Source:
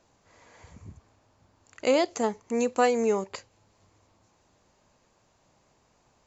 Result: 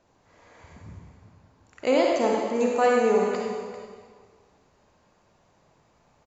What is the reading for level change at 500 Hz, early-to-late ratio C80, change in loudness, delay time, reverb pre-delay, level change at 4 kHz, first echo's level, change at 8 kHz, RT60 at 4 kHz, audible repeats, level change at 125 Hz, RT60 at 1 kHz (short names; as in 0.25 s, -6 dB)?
+4.0 dB, 1.0 dB, +3.0 dB, 0.394 s, 40 ms, +0.5 dB, -12.0 dB, n/a, 1.6 s, 1, n/a, 1.7 s